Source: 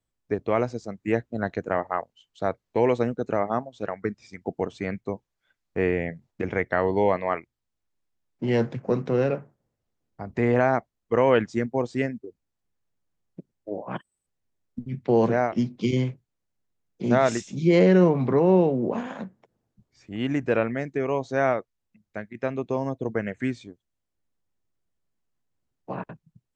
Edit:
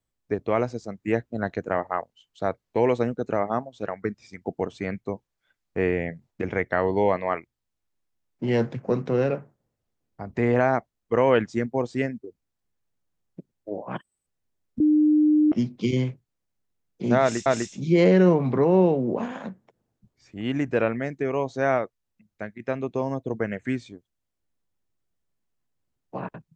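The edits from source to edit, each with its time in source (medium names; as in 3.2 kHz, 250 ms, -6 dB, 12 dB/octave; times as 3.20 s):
14.80–15.52 s: bleep 303 Hz -15 dBFS
17.21–17.46 s: loop, 2 plays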